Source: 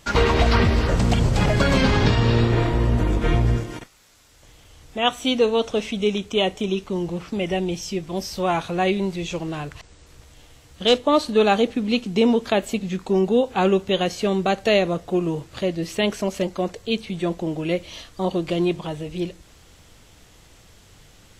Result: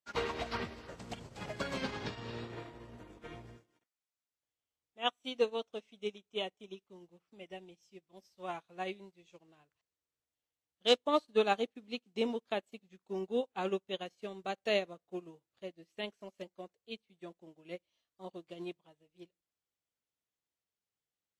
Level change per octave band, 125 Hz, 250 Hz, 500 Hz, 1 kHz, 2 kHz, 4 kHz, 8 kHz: -28.5, -21.0, -15.5, -15.0, -15.5, -14.0, -19.5 dB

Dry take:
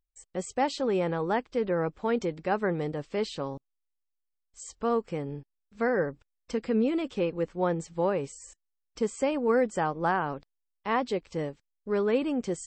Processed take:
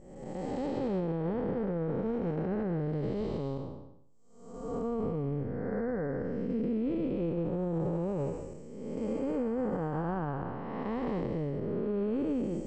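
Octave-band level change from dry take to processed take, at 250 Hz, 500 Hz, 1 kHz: -0.5, -5.0, -9.5 dB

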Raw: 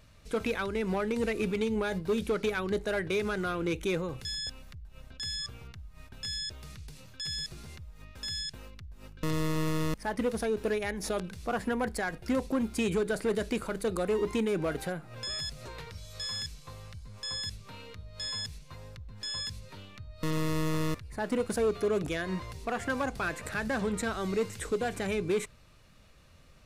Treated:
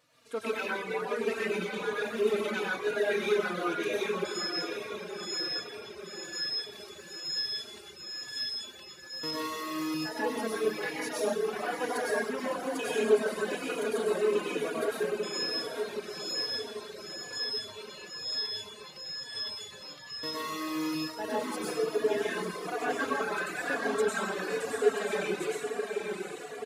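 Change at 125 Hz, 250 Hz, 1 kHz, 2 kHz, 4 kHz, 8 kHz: -12.0, -4.0, +2.0, +2.5, +3.0, +0.5 dB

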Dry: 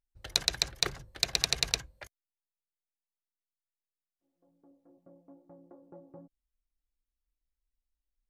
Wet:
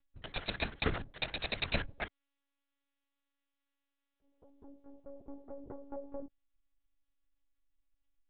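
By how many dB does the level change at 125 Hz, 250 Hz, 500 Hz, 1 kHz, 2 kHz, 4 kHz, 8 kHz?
+3.0 dB, +6.0 dB, +3.5 dB, +1.0 dB, 0.0 dB, -11.0 dB, under -40 dB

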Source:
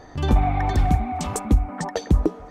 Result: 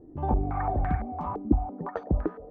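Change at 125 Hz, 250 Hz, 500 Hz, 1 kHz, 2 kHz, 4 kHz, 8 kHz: -8.5 dB, -5.0 dB, -5.0 dB, -5.0 dB, -9.0 dB, under -25 dB, under -40 dB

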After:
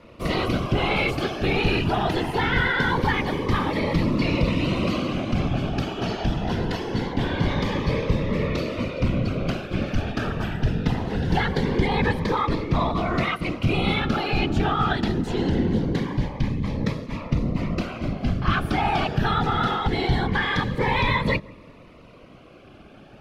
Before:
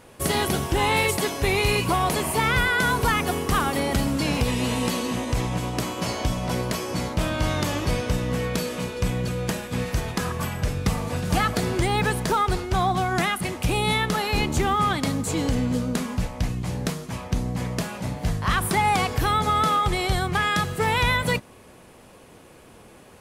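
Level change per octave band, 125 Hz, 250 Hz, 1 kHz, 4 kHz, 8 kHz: +1.5, +2.5, -2.0, -2.0, -16.5 dB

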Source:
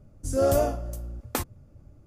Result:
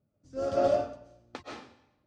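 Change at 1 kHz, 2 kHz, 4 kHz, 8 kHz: -1.5 dB, -5.5 dB, -6.0 dB, under -15 dB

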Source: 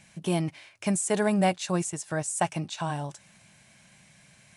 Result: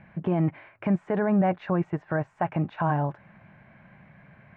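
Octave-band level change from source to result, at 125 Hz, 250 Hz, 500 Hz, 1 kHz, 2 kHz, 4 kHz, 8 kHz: +4.0 dB, +3.0 dB, +1.0 dB, +1.5 dB, -1.0 dB, under -15 dB, under -40 dB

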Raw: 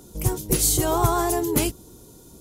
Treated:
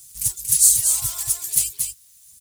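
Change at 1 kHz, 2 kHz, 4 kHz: -22.0, -9.5, +1.0 dB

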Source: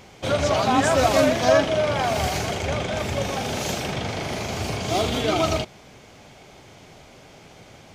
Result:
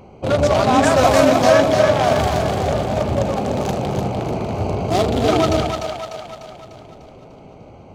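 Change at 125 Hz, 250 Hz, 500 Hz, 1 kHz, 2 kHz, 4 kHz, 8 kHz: +6.5, +6.5, +6.5, +5.5, +2.5, +1.0, +0.5 dB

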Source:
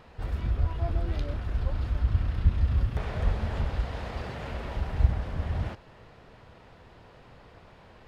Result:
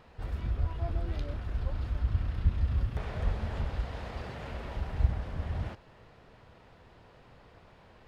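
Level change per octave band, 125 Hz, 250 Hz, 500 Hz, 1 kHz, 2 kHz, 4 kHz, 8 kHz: -4.0 dB, -4.0 dB, -4.0 dB, -4.0 dB, -4.0 dB, -4.0 dB, n/a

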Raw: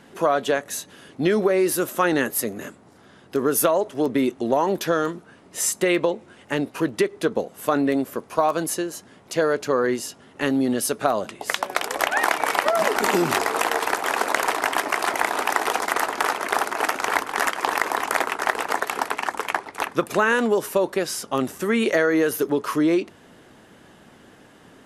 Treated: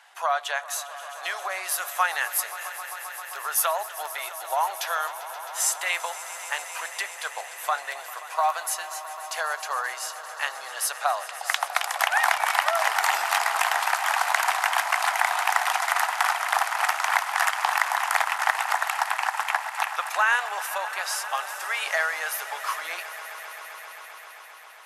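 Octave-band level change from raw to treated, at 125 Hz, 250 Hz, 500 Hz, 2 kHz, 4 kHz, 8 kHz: under -40 dB, under -40 dB, -13.0 dB, +0.5 dB, 0.0 dB, 0.0 dB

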